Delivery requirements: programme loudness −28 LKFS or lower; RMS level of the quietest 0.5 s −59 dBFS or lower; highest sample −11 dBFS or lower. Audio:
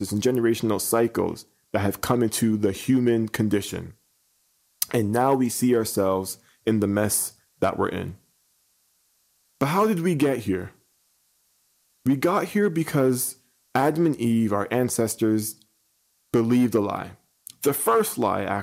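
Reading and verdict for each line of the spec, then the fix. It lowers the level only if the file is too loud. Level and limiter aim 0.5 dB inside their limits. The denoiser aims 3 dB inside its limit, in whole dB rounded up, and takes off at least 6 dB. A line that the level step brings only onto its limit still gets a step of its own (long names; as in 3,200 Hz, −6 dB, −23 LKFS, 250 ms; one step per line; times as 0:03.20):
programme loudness −23.5 LKFS: out of spec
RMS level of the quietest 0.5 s −68 dBFS: in spec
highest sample −5.5 dBFS: out of spec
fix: level −5 dB
brickwall limiter −11.5 dBFS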